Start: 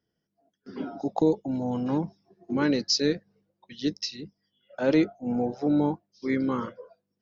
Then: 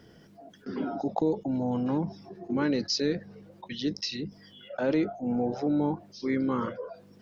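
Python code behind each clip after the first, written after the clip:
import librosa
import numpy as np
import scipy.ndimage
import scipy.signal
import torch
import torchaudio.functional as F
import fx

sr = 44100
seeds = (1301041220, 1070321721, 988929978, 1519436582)

y = fx.high_shelf(x, sr, hz=5900.0, db=-10.5)
y = fx.env_flatten(y, sr, amount_pct=50)
y = y * 10.0 ** (-5.0 / 20.0)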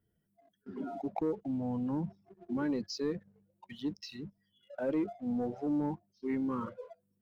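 y = fx.bin_expand(x, sr, power=1.5)
y = fx.peak_eq(y, sr, hz=4400.0, db=-9.0, octaves=2.1)
y = fx.leveller(y, sr, passes=1)
y = y * 10.0 ** (-6.5 / 20.0)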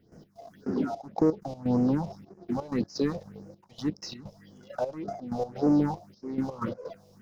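y = fx.bin_compress(x, sr, power=0.6)
y = fx.step_gate(y, sr, bpm=127, pattern='.x.xxxxx..x', floor_db=-12.0, edge_ms=4.5)
y = fx.phaser_stages(y, sr, stages=4, low_hz=250.0, high_hz=3500.0, hz=1.8, feedback_pct=30)
y = y * 10.0 ** (7.0 / 20.0)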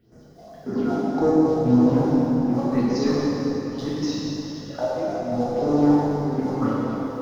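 y = fx.rev_plate(x, sr, seeds[0], rt60_s=3.9, hf_ratio=0.8, predelay_ms=0, drr_db=-8.0)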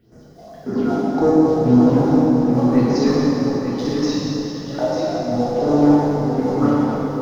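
y = x + 10.0 ** (-7.0 / 20.0) * np.pad(x, (int(895 * sr / 1000.0), 0))[:len(x)]
y = y * 10.0 ** (4.0 / 20.0)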